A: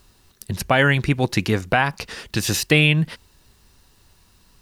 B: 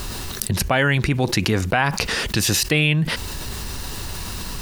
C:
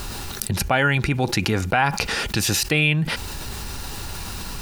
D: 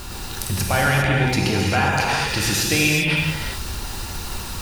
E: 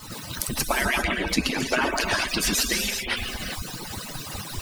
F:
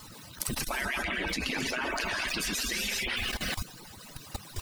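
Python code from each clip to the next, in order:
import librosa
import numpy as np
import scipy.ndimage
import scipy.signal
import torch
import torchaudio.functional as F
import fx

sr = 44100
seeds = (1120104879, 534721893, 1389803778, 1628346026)

y1 = fx.env_flatten(x, sr, amount_pct=70)
y1 = F.gain(torch.from_numpy(y1), -4.0).numpy()
y2 = fx.small_body(y1, sr, hz=(820.0, 1400.0, 2400.0), ring_ms=45, db=8)
y2 = F.gain(torch.from_numpy(y2), -2.0).numpy()
y3 = fx.rev_gated(y2, sr, seeds[0], gate_ms=430, shape='flat', drr_db=-3.5)
y3 = F.gain(torch.from_numpy(y3), -3.0).numpy()
y4 = fx.hpss_only(y3, sr, part='percussive')
y4 = F.gain(torch.from_numpy(y4), 2.0).numpy()
y5 = fx.dynamic_eq(y4, sr, hz=2200.0, q=0.76, threshold_db=-35.0, ratio=4.0, max_db=5)
y5 = fx.level_steps(y5, sr, step_db=16)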